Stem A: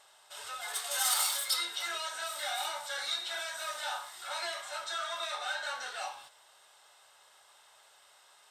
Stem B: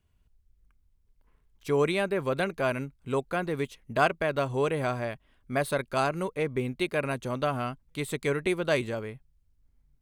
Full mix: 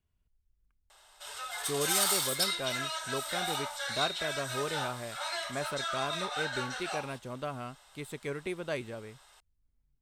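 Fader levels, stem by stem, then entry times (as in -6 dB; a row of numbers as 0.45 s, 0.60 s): +1.0 dB, -9.0 dB; 0.90 s, 0.00 s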